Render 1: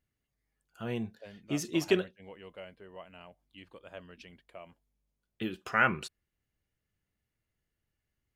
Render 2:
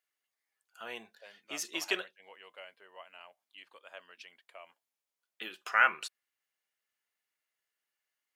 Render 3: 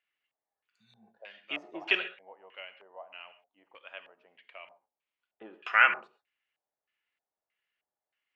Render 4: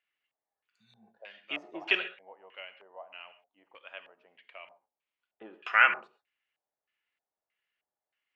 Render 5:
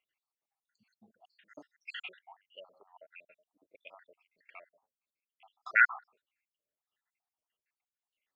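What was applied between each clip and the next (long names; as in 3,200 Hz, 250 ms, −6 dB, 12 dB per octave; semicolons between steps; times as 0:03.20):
high-pass filter 850 Hz 12 dB per octave; level +2 dB
healed spectral selection 0:00.72–0:01.05, 220–3,500 Hz both; reverb whose tail is shaped and stops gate 160 ms flat, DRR 11 dB; auto-filter low-pass square 1.6 Hz 760–2,700 Hz
no processing that can be heard
time-frequency cells dropped at random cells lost 74%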